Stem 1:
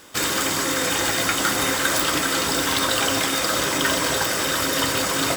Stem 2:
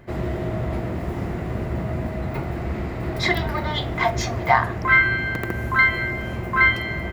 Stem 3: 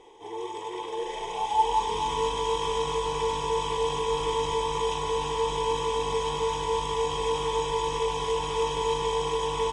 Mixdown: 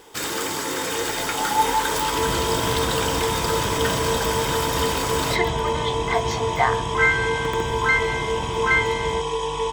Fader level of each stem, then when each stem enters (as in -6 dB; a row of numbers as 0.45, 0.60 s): -5.0, -3.0, +2.5 dB; 0.00, 2.10, 0.00 s